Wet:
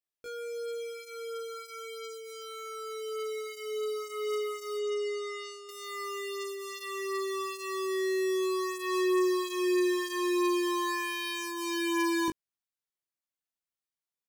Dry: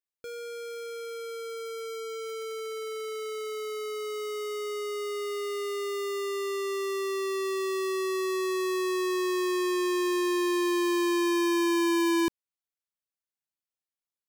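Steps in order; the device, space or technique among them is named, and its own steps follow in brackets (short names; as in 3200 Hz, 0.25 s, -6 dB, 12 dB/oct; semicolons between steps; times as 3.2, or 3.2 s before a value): 4.77–5.69 LPF 7700 Hz 24 dB/oct; double-tracked vocal (doubler 19 ms -6 dB; chorus 0.18 Hz, delay 16 ms, depth 7.4 ms)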